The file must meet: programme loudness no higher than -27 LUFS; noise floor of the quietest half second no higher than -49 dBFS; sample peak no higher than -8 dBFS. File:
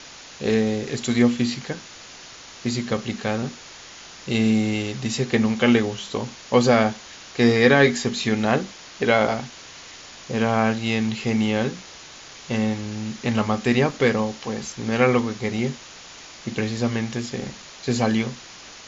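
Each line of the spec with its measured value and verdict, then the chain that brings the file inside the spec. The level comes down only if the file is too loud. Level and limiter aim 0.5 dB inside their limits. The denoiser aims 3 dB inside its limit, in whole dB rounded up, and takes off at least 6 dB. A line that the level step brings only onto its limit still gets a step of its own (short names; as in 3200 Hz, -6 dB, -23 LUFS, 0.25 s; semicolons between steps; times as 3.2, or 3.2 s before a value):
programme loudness -22.5 LUFS: fail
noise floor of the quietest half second -42 dBFS: fail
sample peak -3.5 dBFS: fail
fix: denoiser 6 dB, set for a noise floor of -42 dBFS; gain -5 dB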